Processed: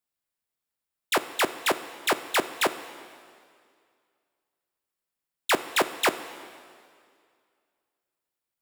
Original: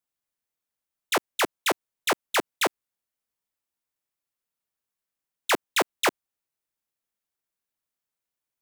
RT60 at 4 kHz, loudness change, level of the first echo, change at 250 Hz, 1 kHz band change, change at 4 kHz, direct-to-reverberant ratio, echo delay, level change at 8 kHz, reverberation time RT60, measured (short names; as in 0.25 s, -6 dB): 2.1 s, 0.0 dB, none, +0.5 dB, +0.5 dB, 0.0 dB, 11.5 dB, none, -1.0 dB, 2.2 s